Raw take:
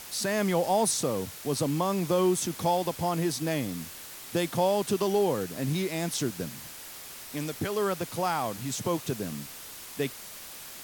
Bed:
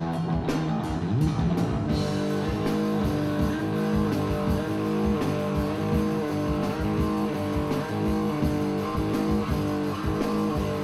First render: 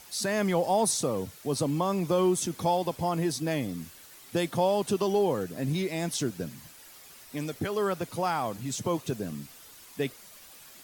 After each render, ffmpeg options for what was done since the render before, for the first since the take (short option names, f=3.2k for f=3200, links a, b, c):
-af "afftdn=nr=9:nf=-44"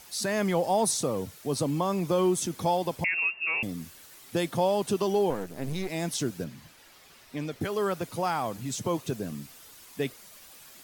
-filter_complex "[0:a]asettb=1/sr,asplit=3[a][b][c];[a]atrim=end=3.044[d];[b]atrim=start=3.04:end=3.63,asetpts=PTS-STARTPTS,afade=t=in:d=0.004:c=qsin,afade=t=out:st=0.586:d=0.004:c=qsin,lowpass=f=2.5k:t=q:w=0.5098,lowpass=f=2.5k:t=q:w=0.6013,lowpass=f=2.5k:t=q:w=0.9,lowpass=f=2.5k:t=q:w=2.563,afreqshift=-2900[e];[c]atrim=start=3.626[f];[d][e]acrossfade=d=0.004:c1=hsin:c2=qsin[g];[g][f]acrossfade=d=0.004:c1=qsin:c2=hsin,asettb=1/sr,asplit=3[h][i][j];[h]atrim=end=5.304[k];[i]atrim=start=5.3:end=5.9,asetpts=PTS-STARTPTS,afade=t=in:d=0.004:c=qsin,afade=t=out:st=0.596:d=0.004:c=qsin,aeval=exprs='if(lt(val(0),0),0.251*val(0),val(0))':c=same[l];[j]atrim=start=5.896[m];[k][l]acrossfade=d=0.004:c1=hsin:c2=qsin[n];[n][m]acrossfade=d=0.004:c1=qsin:c2=hsin,asettb=1/sr,asplit=3[o][p][q];[o]atrim=end=6.444[r];[p]atrim=start=6.44:end=7.61,asetpts=PTS-STARTPTS,afade=t=in:d=0.004:c=qsin,afade=t=out:st=1.166:d=0.004:c=qsin,acrossover=split=5100[s][t];[t]acompressor=threshold=-58dB:ratio=4:attack=1:release=60[u];[s][u]amix=inputs=2:normalize=0[v];[q]atrim=start=7.606[w];[r][v]acrossfade=d=0.004:c1=hsin:c2=qsin[x];[x][w]acrossfade=d=0.004:c1=qsin:c2=hsin"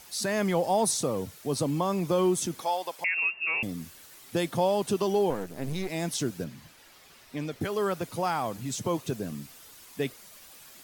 -filter_complex "[0:a]asplit=3[a][b][c];[a]afade=t=out:st=2.59:d=0.02[d];[b]highpass=660,afade=t=in:st=2.59:d=0.02,afade=t=out:st=3.15:d=0.02[e];[c]afade=t=in:st=3.15:d=0.02[f];[d][e][f]amix=inputs=3:normalize=0"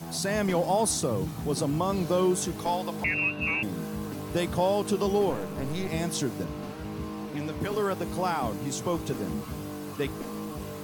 -filter_complex "[1:a]volume=-10.5dB[a];[0:a][a]amix=inputs=2:normalize=0"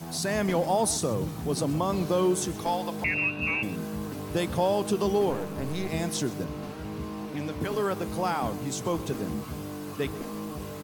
-filter_complex "[0:a]asplit=2[a][b];[b]adelay=128.3,volume=-17dB,highshelf=f=4k:g=-2.89[c];[a][c]amix=inputs=2:normalize=0"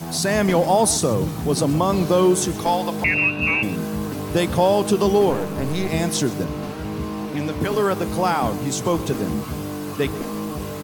-af "volume=8dB"